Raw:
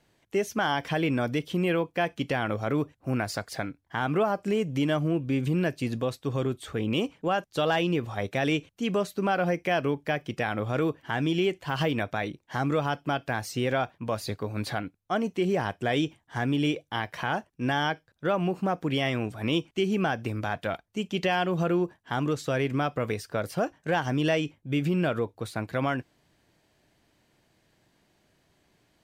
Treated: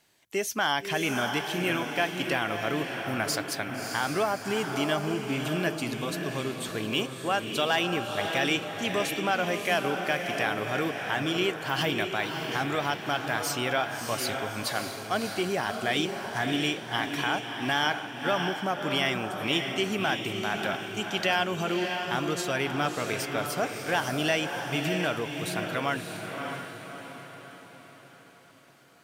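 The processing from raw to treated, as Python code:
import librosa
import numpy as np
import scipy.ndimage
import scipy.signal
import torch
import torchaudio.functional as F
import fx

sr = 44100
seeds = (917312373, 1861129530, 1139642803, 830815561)

p1 = fx.tilt_eq(x, sr, slope=2.5)
p2 = fx.notch(p1, sr, hz=500.0, q=12.0)
y = p2 + fx.echo_diffused(p2, sr, ms=617, feedback_pct=49, wet_db=-5, dry=0)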